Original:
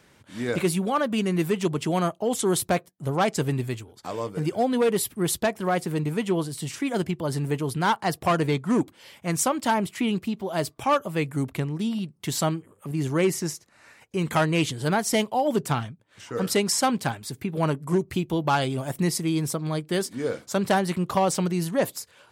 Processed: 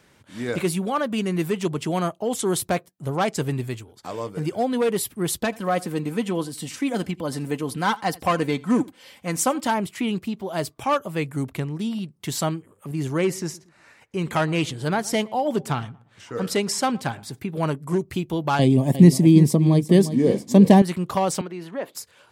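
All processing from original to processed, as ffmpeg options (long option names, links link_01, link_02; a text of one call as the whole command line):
ffmpeg -i in.wav -filter_complex "[0:a]asettb=1/sr,asplit=3[link_01][link_02][link_03];[link_01]atrim=end=5.394[link_04];[link_02]atrim=start=5.39:end=9.67,asetpts=PTS-STARTPTS,afade=type=in:duration=0.004:curve=qsin,afade=type=out:start_time=4.276:duration=0.004:curve=qsin,aecho=1:1:3.9:0.46,atrim=end_sample=188748,aecho=1:1:83:0.0708,atrim=end_sample=188748[link_05];[link_03]atrim=start=9.666[link_06];[link_04][link_05]acrossfade=duration=0.004:curve1=hsin:curve2=qsin[link_07];[link_07][link_06]acrossfade=duration=0.004:curve1=qsin:curve2=hsin,asettb=1/sr,asplit=3[link_08][link_09][link_10];[link_08]atrim=end=13.184[link_11];[link_09]atrim=start=13.18:end=17.39,asetpts=PTS-STARTPTS,afade=type=in:duration=0.004:curve=qsin,afade=type=out:start_time=4.206:duration=0.004:curve=qsin,highshelf=frequency=8900:gain=-6.5,asplit=2[link_12][link_13];[link_13]adelay=116,lowpass=frequency=1400:poles=1,volume=-21dB,asplit=2[link_14][link_15];[link_15]adelay=116,lowpass=frequency=1400:poles=1,volume=0.37,asplit=2[link_16][link_17];[link_17]adelay=116,lowpass=frequency=1400:poles=1,volume=0.37[link_18];[link_12][link_14][link_16][link_18]amix=inputs=4:normalize=0,atrim=end_sample=185661[link_19];[link_10]atrim=start=17.386[link_20];[link_11][link_19]acrossfade=duration=0.004:curve1=hsin:curve2=qsin[link_21];[link_21][link_20]acrossfade=duration=0.004:curve1=qsin:curve2=hsin,asettb=1/sr,asplit=3[link_22][link_23][link_24];[link_22]atrim=end=18.594[link_25];[link_23]atrim=start=18.59:end=20.82,asetpts=PTS-STARTPTS,afade=type=in:duration=0.004:curve=qsin,afade=type=out:start_time=2.226:duration=0.004:curve=qsin,asuperstop=centerf=1400:order=4:qfactor=2.7,equalizer=frequency=210:width=0.62:gain=15,aecho=1:1:354:0.251,atrim=end_sample=98343[link_26];[link_24]atrim=start=20.816[link_27];[link_25][link_26]acrossfade=duration=0.004:curve1=hsin:curve2=qsin[link_28];[link_28][link_27]acrossfade=duration=0.004:curve1=qsin:curve2=hsin,asettb=1/sr,asplit=3[link_29][link_30][link_31];[link_29]atrim=end=21.414[link_32];[link_30]atrim=start=21.41:end=21.95,asetpts=PTS-STARTPTS,afade=type=in:duration=0.004:curve=qsin,afade=type=out:start_time=0.536:duration=0.004:curve=qsin,acrossover=split=230 3500:gain=0.0794 1 0.112[link_33][link_34][link_35];[link_33][link_34][link_35]amix=inputs=3:normalize=0,acompressor=threshold=-34dB:ratio=1.5:attack=3.2:release=140:knee=1:detection=peak[link_36];[link_31]atrim=start=21.946[link_37];[link_32][link_36]acrossfade=duration=0.004:curve1=hsin:curve2=qsin[link_38];[link_38][link_37]acrossfade=duration=0.004:curve1=qsin:curve2=hsin" out.wav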